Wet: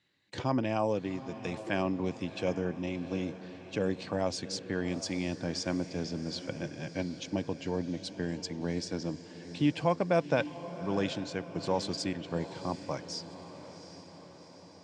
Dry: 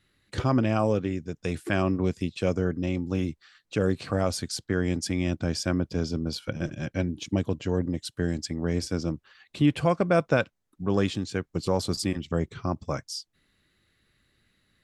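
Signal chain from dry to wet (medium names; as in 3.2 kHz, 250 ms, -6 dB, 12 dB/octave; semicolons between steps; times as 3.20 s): cabinet simulation 160–7200 Hz, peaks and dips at 220 Hz -4 dB, 400 Hz -4 dB, 920 Hz +5 dB, 1.3 kHz -9 dB; echo that smears into a reverb 758 ms, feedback 59%, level -13 dB; trim -3.5 dB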